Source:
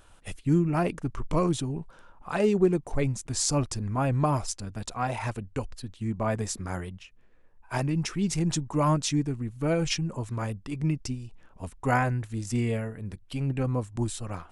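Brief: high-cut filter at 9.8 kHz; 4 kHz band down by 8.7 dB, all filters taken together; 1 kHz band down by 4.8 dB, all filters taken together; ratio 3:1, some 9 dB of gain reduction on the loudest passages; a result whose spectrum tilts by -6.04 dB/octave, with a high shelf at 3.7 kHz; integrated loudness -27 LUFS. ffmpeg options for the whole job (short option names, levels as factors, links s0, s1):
-af "lowpass=9800,equalizer=f=1000:t=o:g=-5.5,highshelf=f=3700:g=-5,equalizer=f=4000:t=o:g=-8,acompressor=threshold=0.0316:ratio=3,volume=2.51"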